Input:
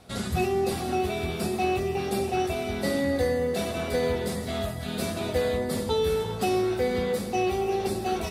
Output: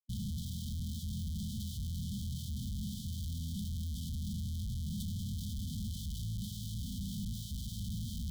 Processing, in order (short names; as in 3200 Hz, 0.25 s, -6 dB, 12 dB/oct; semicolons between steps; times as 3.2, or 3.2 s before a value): passive tone stack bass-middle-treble 10-0-1; in parallel at -2 dB: limiter -39 dBFS, peak gain reduction 11.5 dB; on the sum: Schmitt trigger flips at -49.5 dBFS; brick-wall FIR band-stop 240–3000 Hz; gain +5 dB